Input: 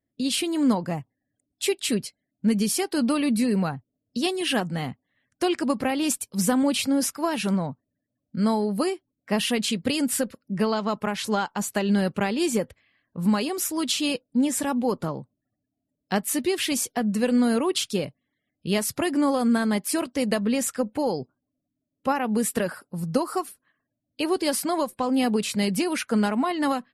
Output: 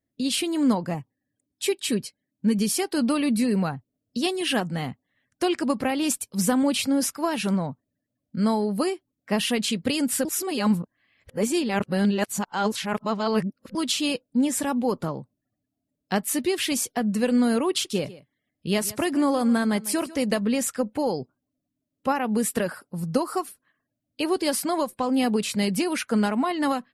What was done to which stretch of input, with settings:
0.94–2.59 s: comb of notches 690 Hz
10.25–13.75 s: reverse
17.70–20.46 s: delay 147 ms -18 dB

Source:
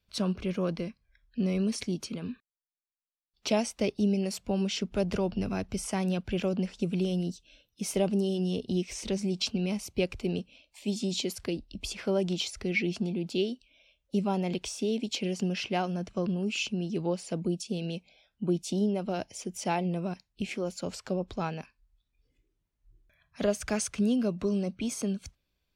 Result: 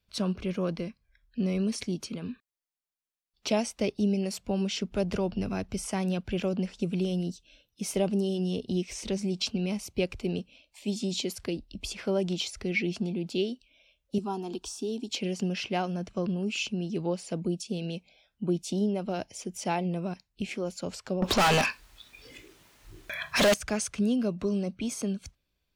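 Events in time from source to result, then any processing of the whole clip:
14.18–15.10 s: static phaser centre 560 Hz, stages 6
21.22–23.54 s: overdrive pedal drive 40 dB, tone 7.6 kHz, clips at -15 dBFS

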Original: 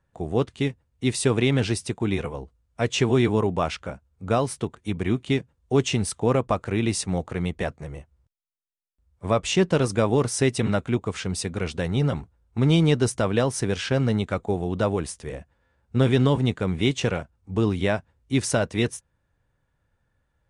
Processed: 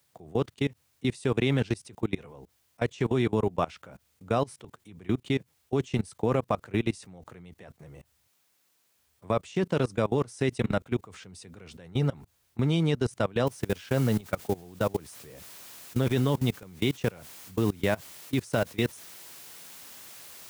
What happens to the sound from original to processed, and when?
13.47 s: noise floor step -64 dB -42 dB
whole clip: high-pass 84 Hz 24 dB/octave; level held to a coarse grid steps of 23 dB; trim -1 dB

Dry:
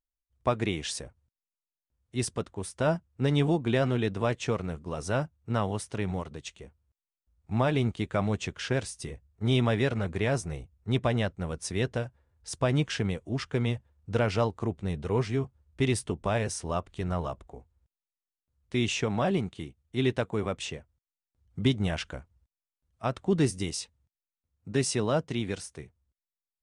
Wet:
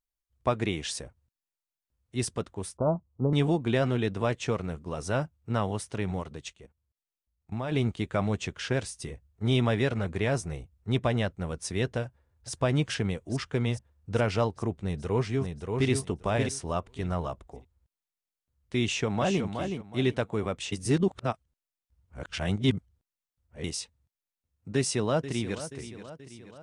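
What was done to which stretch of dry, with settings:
2.77–3.33 s: steep low-pass 1.2 kHz 72 dB/octave
6.53–7.72 s: level held to a coarse grid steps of 16 dB
12.04–12.52 s: echo throw 420 ms, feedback 75%, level -6 dB
14.79–15.90 s: echo throw 580 ms, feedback 15%, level -4.5 dB
18.84–19.44 s: echo throw 370 ms, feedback 25%, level -6.5 dB
20.72–23.64 s: reverse
24.75–25.61 s: echo throw 480 ms, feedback 55%, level -13 dB

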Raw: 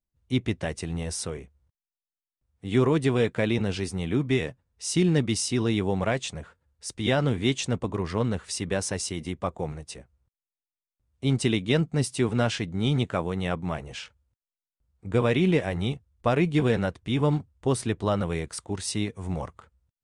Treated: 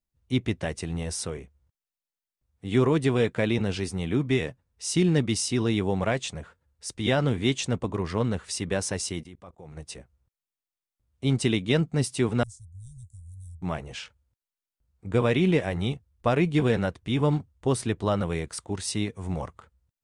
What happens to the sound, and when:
9.21–9.77 s: level held to a coarse grid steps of 22 dB
12.43–13.62 s: inverse Chebyshev band-stop 250–2900 Hz, stop band 60 dB

